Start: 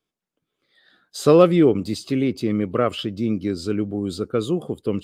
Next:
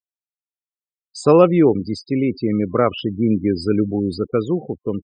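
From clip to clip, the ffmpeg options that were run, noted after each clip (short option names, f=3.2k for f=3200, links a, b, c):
-af "afftfilt=real='re*gte(hypot(re,im),0.0316)':imag='im*gte(hypot(re,im),0.0316)':win_size=1024:overlap=0.75,superequalizer=9b=2:13b=0.316,dynaudnorm=f=350:g=7:m=11.5dB"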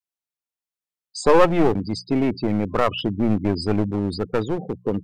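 -af "aeval=exprs='clip(val(0),-1,0.0944)':c=same,adynamicequalizer=threshold=0.0355:dfrequency=350:dqfactor=0.77:tfrequency=350:tqfactor=0.77:attack=5:release=100:ratio=0.375:range=3:mode=cutabove:tftype=bell,bandreject=f=60:t=h:w=6,bandreject=f=120:t=h:w=6,bandreject=f=180:t=h:w=6,volume=1.5dB"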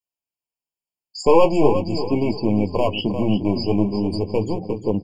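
-filter_complex "[0:a]asplit=2[a][b];[b]aecho=0:1:351|702|1053|1404:0.316|0.114|0.041|0.0148[c];[a][c]amix=inputs=2:normalize=0,flanger=delay=9.3:depth=6.8:regen=-37:speed=0.42:shape=sinusoidal,afftfilt=real='re*eq(mod(floor(b*sr/1024/1100),2),0)':imag='im*eq(mod(floor(b*sr/1024/1100),2),0)':win_size=1024:overlap=0.75,volume=5dB"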